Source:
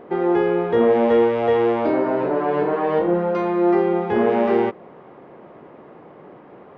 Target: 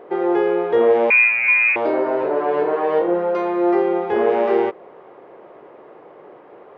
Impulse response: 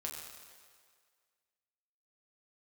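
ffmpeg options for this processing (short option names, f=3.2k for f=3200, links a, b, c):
-filter_complex "[0:a]lowshelf=f=300:t=q:w=1.5:g=-8.5,asettb=1/sr,asplit=3[a][b][c];[a]atrim=end=1.104[d];[b]atrim=start=1.1:end=1.76,asetpts=PTS-STARTPTS,afade=t=in:d=0.004:c=qsin,afade=t=out:st=0.656:d=0.004:c=qsin,lowpass=f=2.5k:t=q:w=0.5098,lowpass=f=2.5k:t=q:w=0.6013,lowpass=f=2.5k:t=q:w=0.9,lowpass=f=2.5k:t=q:w=2.563,afreqshift=-2900[e];[c]atrim=start=1.756[f];[d][e]acrossfade=d=0.004:c1=hsin:c2=qsin[g];[g][f]acrossfade=d=0.004:c1=qsin:c2=hsin"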